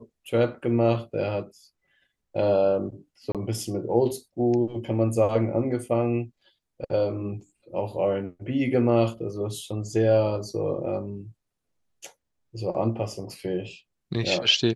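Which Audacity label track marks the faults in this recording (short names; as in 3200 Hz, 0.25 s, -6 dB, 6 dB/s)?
3.320000	3.350000	gap 27 ms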